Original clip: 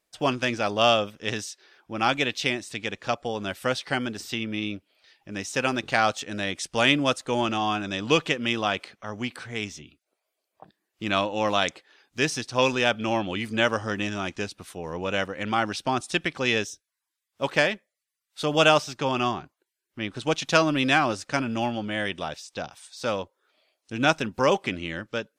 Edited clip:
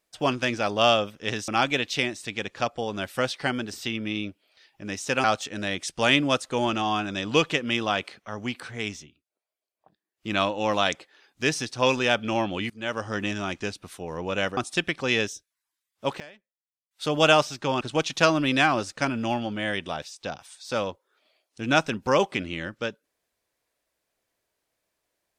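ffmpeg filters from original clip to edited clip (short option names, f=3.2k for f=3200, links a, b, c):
-filter_complex "[0:a]asplit=10[a][b][c][d][e][f][g][h][i][j];[a]atrim=end=1.482[k];[b]atrim=start=1.948:end=5.712[l];[c]atrim=start=5.998:end=9.88,asetpts=PTS-STARTPTS,afade=t=out:st=3.722:d=0.16:silence=0.266073[m];[d]atrim=start=9.88:end=10.89,asetpts=PTS-STARTPTS,volume=-11.5dB[n];[e]atrim=start=10.89:end=13.46,asetpts=PTS-STARTPTS,afade=t=in:d=0.16:silence=0.266073,afade=t=out:st=2.566:d=0.004:c=hsin:silence=0.0668344[o];[f]atrim=start=13.46:end=15.332,asetpts=PTS-STARTPTS,afade=t=in:d=0.49:silence=0.0668344[p];[g]atrim=start=15.938:end=17.57,asetpts=PTS-STARTPTS,afade=t=out:st=1.502:d=0.13:c=log:silence=0.0668344[q];[h]atrim=start=17.57:end=18.28,asetpts=PTS-STARTPTS,volume=-23.5dB[r];[i]atrim=start=18.28:end=19.182,asetpts=PTS-STARTPTS,afade=t=in:d=0.13:c=log:silence=0.0668344[s];[j]atrim=start=20.128[t];[k][l]acrossfade=d=0.004:c1=hsin:c2=hsin[u];[m][n][o][p]concat=n=4:v=0:a=1[v];[u][v]acrossfade=d=0.004:c1=hsin:c2=hsin[w];[q][r][s]concat=n=3:v=0:a=1[x];[w][x]acrossfade=d=0.004:c1=hsin:c2=hsin[y];[y][t]acrossfade=d=0.004:c1=hsin:c2=hsin"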